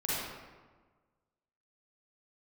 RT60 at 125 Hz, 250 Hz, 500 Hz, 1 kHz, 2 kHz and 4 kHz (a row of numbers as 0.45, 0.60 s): 1.6, 1.5, 1.4, 1.4, 1.1, 0.80 s